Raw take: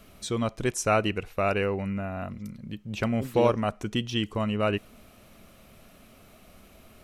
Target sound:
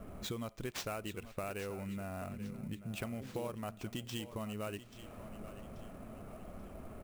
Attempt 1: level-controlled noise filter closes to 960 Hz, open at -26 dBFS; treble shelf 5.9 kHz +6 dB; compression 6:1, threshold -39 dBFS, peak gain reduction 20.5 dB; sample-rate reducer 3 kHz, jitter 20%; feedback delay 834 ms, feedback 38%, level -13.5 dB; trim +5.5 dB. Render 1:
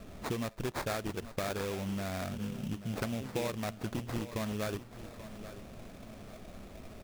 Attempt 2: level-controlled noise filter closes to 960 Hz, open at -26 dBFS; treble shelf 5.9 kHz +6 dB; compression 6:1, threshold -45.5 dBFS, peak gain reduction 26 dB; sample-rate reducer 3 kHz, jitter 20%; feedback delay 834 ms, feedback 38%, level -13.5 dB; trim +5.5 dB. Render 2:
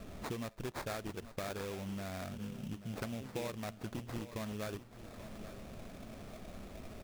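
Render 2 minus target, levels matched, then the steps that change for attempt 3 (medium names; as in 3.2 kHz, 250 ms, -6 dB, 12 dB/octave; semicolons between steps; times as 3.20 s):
sample-rate reducer: distortion +6 dB
change: sample-rate reducer 11 kHz, jitter 20%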